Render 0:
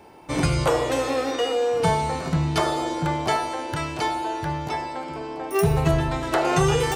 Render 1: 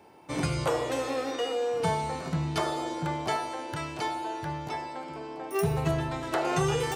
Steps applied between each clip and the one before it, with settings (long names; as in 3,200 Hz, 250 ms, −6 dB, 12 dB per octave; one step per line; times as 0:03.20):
high-pass filter 83 Hz
level −6.5 dB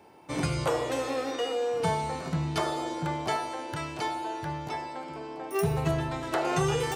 no processing that can be heard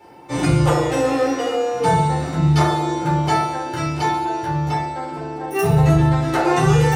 rectangular room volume 220 cubic metres, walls furnished, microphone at 4.2 metres
level +1 dB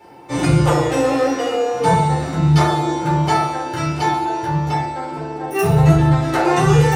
flanger 1.5 Hz, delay 4 ms, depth 7.4 ms, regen +78%
level +6 dB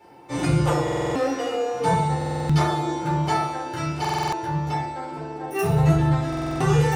buffer that repeats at 0:00.83/0:02.17/0:04.00/0:06.28, samples 2,048, times 6
level −6 dB